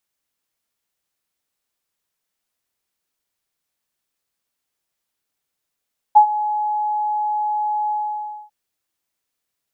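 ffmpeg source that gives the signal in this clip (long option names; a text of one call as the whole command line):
ffmpeg -f lavfi -i "aevalsrc='0.668*sin(2*PI*844*t)':duration=2.349:sample_rate=44100,afade=type=in:duration=0.018,afade=type=out:start_time=0.018:duration=0.091:silence=0.178,afade=type=out:start_time=1.75:duration=0.599" out.wav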